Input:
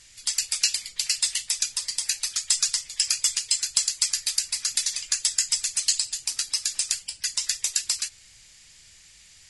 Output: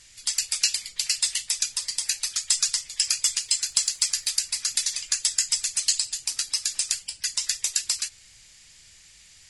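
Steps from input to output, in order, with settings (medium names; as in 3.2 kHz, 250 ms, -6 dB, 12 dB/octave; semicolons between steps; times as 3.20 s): 3.37–4.27 s: crackle 35 per s -> 170 per s -42 dBFS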